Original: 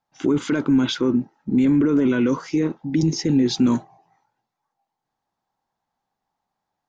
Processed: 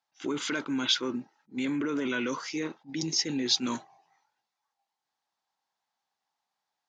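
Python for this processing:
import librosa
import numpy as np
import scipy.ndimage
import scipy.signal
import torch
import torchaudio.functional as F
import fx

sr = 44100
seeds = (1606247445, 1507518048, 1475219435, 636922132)

y = scipy.signal.sosfilt(scipy.signal.butter(2, 5100.0, 'lowpass', fs=sr, output='sos'), x)
y = fx.tilt_eq(y, sr, slope=4.5)
y = fx.attack_slew(y, sr, db_per_s=340.0)
y = y * librosa.db_to_amplitude(-5.0)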